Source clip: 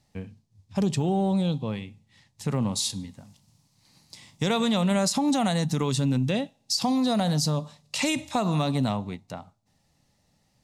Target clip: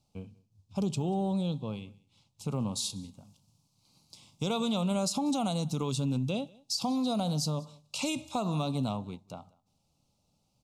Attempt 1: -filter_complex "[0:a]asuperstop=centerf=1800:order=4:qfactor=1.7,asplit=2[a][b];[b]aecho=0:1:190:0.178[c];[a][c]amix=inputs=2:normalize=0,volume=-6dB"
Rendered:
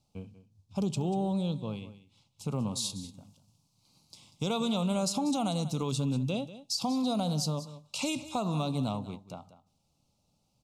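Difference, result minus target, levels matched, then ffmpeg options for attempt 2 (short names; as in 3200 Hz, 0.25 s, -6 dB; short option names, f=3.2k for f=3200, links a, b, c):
echo-to-direct +10.5 dB
-filter_complex "[0:a]asuperstop=centerf=1800:order=4:qfactor=1.7,asplit=2[a][b];[b]aecho=0:1:190:0.0531[c];[a][c]amix=inputs=2:normalize=0,volume=-6dB"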